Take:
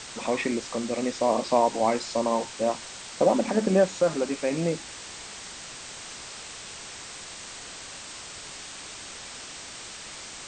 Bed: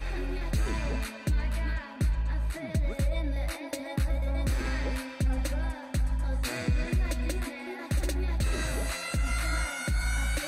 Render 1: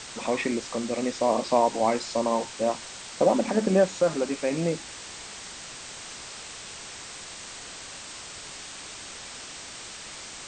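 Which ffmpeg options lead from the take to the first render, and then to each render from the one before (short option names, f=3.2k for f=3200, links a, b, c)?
-af anull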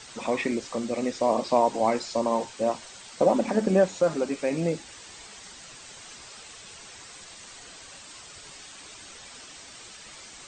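-af "afftdn=nr=8:nf=-41"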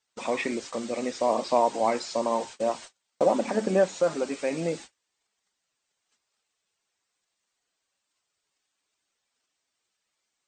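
-af "lowshelf=f=190:g=-9.5,agate=range=-35dB:threshold=-40dB:ratio=16:detection=peak"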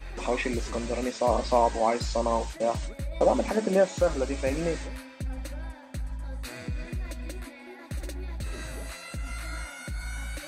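-filter_complex "[1:a]volume=-6.5dB[a];[0:a][a]amix=inputs=2:normalize=0"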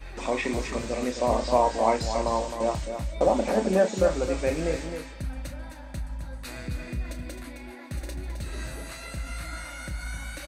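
-filter_complex "[0:a]asplit=2[a][b];[b]adelay=32,volume=-10dB[c];[a][c]amix=inputs=2:normalize=0,aecho=1:1:263:0.398"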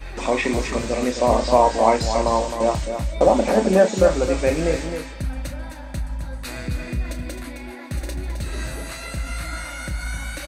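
-af "volume=6.5dB,alimiter=limit=-2dB:level=0:latency=1"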